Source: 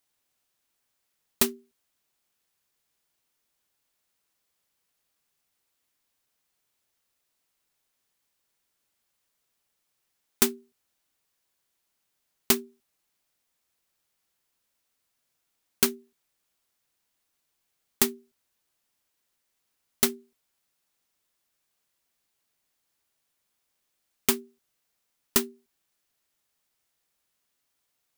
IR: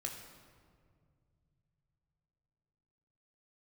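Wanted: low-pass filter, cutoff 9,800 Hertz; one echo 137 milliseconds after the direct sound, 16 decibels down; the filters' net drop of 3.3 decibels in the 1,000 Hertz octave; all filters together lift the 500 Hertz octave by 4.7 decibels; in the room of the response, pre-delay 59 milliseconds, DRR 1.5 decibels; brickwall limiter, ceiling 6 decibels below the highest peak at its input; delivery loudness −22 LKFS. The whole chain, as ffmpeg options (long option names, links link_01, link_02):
-filter_complex "[0:a]lowpass=9800,equalizer=frequency=500:width_type=o:gain=8,equalizer=frequency=1000:width_type=o:gain=-6.5,alimiter=limit=-12.5dB:level=0:latency=1,aecho=1:1:137:0.158,asplit=2[link_01][link_02];[1:a]atrim=start_sample=2205,adelay=59[link_03];[link_02][link_03]afir=irnorm=-1:irlink=0,volume=-0.5dB[link_04];[link_01][link_04]amix=inputs=2:normalize=0,volume=11dB"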